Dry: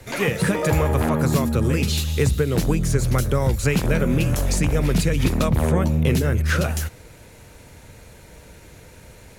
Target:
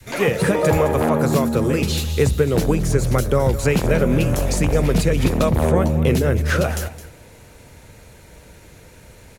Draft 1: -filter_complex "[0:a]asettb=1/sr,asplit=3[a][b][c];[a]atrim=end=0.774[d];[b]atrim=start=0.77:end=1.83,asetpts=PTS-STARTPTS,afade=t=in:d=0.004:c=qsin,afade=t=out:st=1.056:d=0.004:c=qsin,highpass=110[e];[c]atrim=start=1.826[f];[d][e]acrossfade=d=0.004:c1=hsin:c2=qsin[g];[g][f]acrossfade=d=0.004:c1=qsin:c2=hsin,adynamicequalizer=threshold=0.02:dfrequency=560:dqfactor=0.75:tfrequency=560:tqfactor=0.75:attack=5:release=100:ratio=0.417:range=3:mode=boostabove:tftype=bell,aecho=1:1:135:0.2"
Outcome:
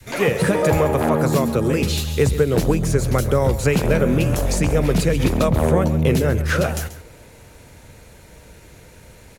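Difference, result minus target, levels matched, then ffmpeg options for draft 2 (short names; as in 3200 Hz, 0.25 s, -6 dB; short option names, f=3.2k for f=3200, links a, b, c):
echo 79 ms early
-filter_complex "[0:a]asettb=1/sr,asplit=3[a][b][c];[a]atrim=end=0.774[d];[b]atrim=start=0.77:end=1.83,asetpts=PTS-STARTPTS,afade=t=in:d=0.004:c=qsin,afade=t=out:st=1.056:d=0.004:c=qsin,highpass=110[e];[c]atrim=start=1.826[f];[d][e]acrossfade=d=0.004:c1=hsin:c2=qsin[g];[g][f]acrossfade=d=0.004:c1=qsin:c2=hsin,adynamicequalizer=threshold=0.02:dfrequency=560:dqfactor=0.75:tfrequency=560:tqfactor=0.75:attack=5:release=100:ratio=0.417:range=3:mode=boostabove:tftype=bell,aecho=1:1:214:0.2"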